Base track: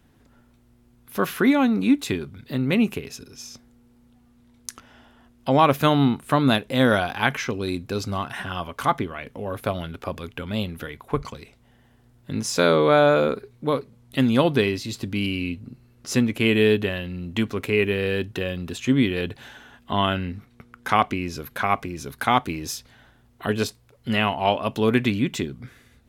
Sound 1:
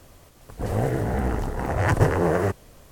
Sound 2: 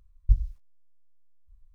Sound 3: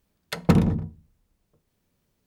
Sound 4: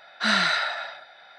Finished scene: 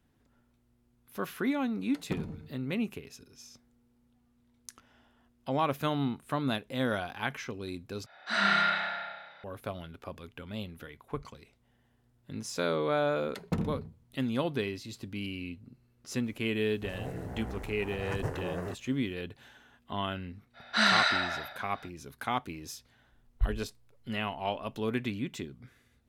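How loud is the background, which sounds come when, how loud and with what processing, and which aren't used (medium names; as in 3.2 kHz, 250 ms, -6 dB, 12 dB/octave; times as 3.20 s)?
base track -12 dB
1.62 s: add 3 -11 dB + feedback comb 150 Hz, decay 1.7 s
8.06 s: replace with 4 -11 dB + spring tank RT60 1.1 s, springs 30 ms, chirp 60 ms, DRR -7 dB
13.03 s: add 3 -13.5 dB
16.23 s: add 1 -15.5 dB
20.53 s: add 4 -2.5 dB, fades 0.05 s
23.12 s: add 2 -7.5 dB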